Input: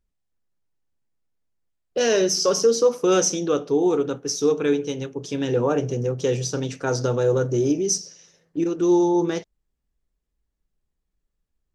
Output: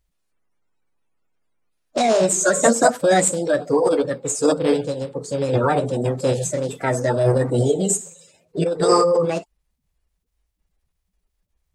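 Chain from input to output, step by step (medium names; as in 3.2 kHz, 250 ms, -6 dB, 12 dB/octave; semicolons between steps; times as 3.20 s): coarse spectral quantiser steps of 30 dB; formant shift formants +5 st; trim +3.5 dB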